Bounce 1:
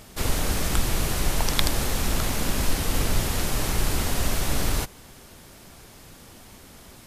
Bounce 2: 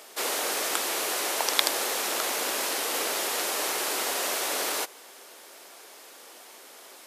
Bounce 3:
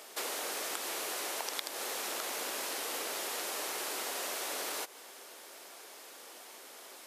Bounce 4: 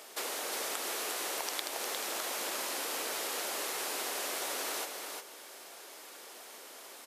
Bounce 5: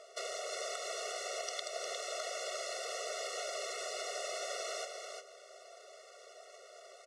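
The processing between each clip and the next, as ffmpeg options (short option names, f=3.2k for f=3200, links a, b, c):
-af "highpass=f=390:w=0.5412,highpass=f=390:w=1.3066,volume=1.5dB"
-af "acompressor=threshold=-32dB:ratio=6,volume=-2.5dB"
-af "aecho=1:1:355:0.562"
-filter_complex "[0:a]acrossover=split=1500[a][b];[b]aeval=exprs='sgn(val(0))*max(abs(val(0))-0.0015,0)':c=same[c];[a][c]amix=inputs=2:normalize=0,highpass=440,equalizer=f=640:t=q:w=4:g=6,equalizer=f=1.1k:t=q:w=4:g=-4,equalizer=f=6k:t=q:w=4:g=3,lowpass=f=7.8k:w=0.5412,lowpass=f=7.8k:w=1.3066,afftfilt=real='re*eq(mod(floor(b*sr/1024/370),2),1)':imag='im*eq(mod(floor(b*sr/1024/370),2),1)':win_size=1024:overlap=0.75"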